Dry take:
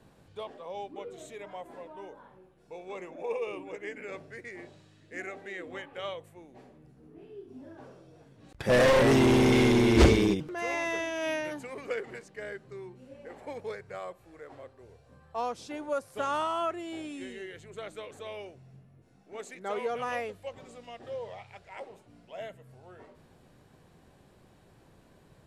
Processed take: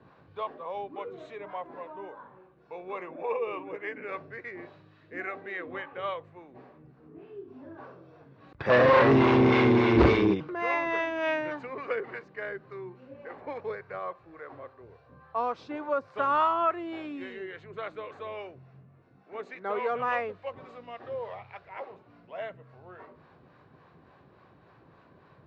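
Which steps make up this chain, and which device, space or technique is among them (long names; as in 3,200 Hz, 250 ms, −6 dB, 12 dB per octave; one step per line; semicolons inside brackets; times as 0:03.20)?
guitar amplifier with harmonic tremolo (two-band tremolo in antiphase 3.5 Hz, depth 50%, crossover 510 Hz; soft clipping −14.5 dBFS, distortion −21 dB; loudspeaker in its box 91–3,800 Hz, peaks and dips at 210 Hz −4 dB, 1,100 Hz +8 dB, 1,500 Hz +3 dB, 3,200 Hz −6 dB)
level +4.5 dB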